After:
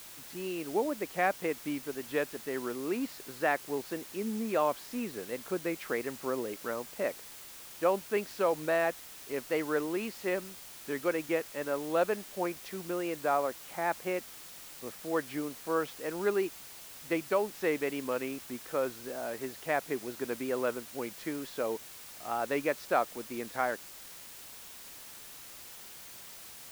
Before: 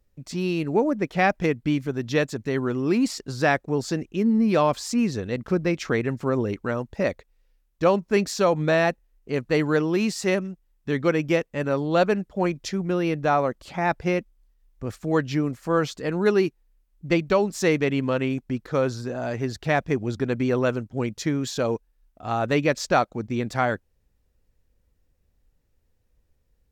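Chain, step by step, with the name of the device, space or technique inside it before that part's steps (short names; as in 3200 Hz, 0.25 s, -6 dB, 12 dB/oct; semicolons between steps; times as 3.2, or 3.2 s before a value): wax cylinder (BPF 340–2600 Hz; wow and flutter; white noise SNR 14 dB); gain -7 dB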